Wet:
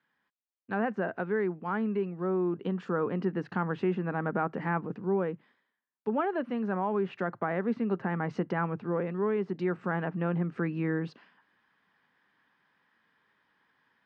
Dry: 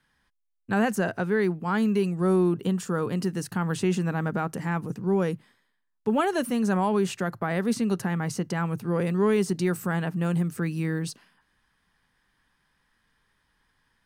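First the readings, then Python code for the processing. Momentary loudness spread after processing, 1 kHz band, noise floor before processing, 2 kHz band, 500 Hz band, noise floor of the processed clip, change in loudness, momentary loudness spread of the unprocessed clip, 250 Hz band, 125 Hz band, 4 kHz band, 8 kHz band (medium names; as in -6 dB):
3 LU, -3.0 dB, -74 dBFS, -4.0 dB, -3.5 dB, -83 dBFS, -5.0 dB, 6 LU, -6.0 dB, -6.5 dB, under -10 dB, under -30 dB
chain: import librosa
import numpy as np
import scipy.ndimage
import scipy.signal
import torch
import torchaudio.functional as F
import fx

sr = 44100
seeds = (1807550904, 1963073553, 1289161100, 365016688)

y = fx.bandpass_edges(x, sr, low_hz=220.0, high_hz=2800.0)
y = fx.rider(y, sr, range_db=10, speed_s=0.5)
y = fx.env_lowpass_down(y, sr, base_hz=2000.0, full_db=-24.5)
y = y * 10.0 ** (-2.5 / 20.0)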